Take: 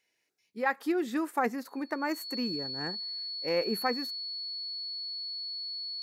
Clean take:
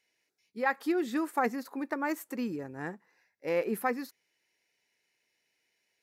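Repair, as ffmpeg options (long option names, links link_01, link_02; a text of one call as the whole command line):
ffmpeg -i in.wav -af "bandreject=frequency=4400:width=30" out.wav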